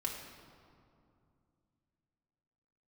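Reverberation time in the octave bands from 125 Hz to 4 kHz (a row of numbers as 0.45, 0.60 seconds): 3.5, 3.3, 2.6, 2.4, 1.7, 1.3 seconds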